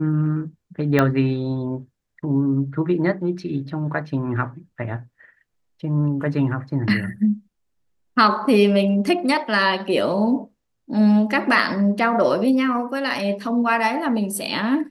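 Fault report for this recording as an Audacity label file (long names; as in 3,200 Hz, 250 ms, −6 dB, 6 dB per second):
0.990000	0.990000	click −6 dBFS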